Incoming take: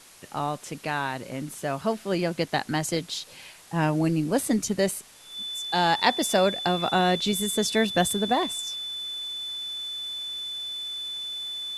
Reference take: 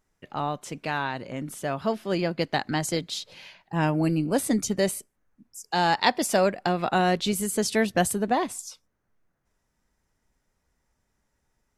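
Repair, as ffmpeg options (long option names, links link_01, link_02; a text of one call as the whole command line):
ffmpeg -i in.wav -af "adeclick=threshold=4,bandreject=frequency=3500:width=30,afftdn=noise_reduction=29:noise_floor=-46" out.wav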